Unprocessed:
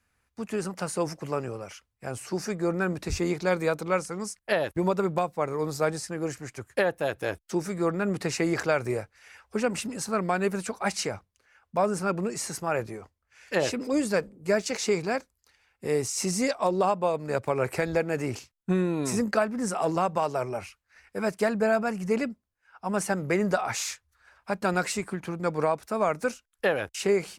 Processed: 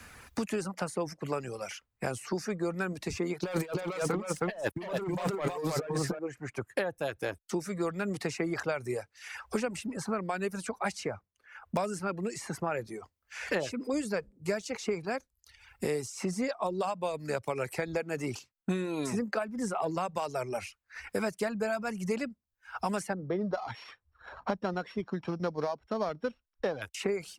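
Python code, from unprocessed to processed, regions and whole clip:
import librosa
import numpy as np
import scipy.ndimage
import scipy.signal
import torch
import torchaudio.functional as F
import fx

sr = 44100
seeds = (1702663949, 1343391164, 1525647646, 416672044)

y = fx.chain(x, sr, fx.echo_single(ms=316, db=-3.5),
    fx.leveller(passes=3),
    fx.over_compress(threshold_db=-23.0, ratio=-0.5), at=(3.43, 6.19))
y = fx.chain(y, sr, fx.sample_sort(block=8),
    fx.lowpass(hz=1100.0, slope=12), at=(23.13, 26.82))
y = fx.dereverb_blind(y, sr, rt60_s=0.63)
y = fx.high_shelf(y, sr, hz=12000.0, db=-3.0)
y = fx.band_squash(y, sr, depth_pct=100)
y = F.gain(torch.from_numpy(y), -6.0).numpy()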